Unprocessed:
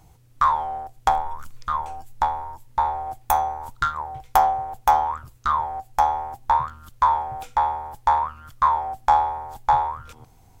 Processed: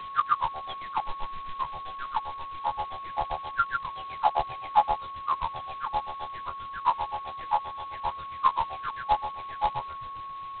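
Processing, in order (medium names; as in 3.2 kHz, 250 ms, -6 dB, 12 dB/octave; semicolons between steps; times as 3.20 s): delay that grows with frequency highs early, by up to 898 ms; granulator, grains 7.6 per s, pitch spread up and down by 0 st; whistle 1.1 kHz -36 dBFS; G.726 16 kbps 8 kHz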